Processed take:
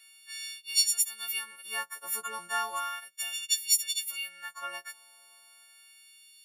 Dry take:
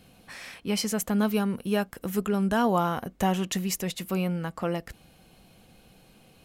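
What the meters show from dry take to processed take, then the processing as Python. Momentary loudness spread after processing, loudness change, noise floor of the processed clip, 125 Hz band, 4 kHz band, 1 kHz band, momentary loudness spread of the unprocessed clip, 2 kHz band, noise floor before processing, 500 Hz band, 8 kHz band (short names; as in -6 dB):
14 LU, -2.0 dB, -58 dBFS, under -40 dB, +6.0 dB, -6.5 dB, 8 LU, 0.0 dB, -58 dBFS, -21.0 dB, +7.5 dB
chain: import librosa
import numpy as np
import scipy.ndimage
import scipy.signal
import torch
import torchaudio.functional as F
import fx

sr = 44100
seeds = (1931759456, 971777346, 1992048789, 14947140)

y = fx.freq_snap(x, sr, grid_st=4)
y = fx.filter_lfo_highpass(y, sr, shape='sine', hz=0.34, low_hz=970.0, high_hz=3700.0, q=1.7)
y = y * 10.0 ** (-6.5 / 20.0)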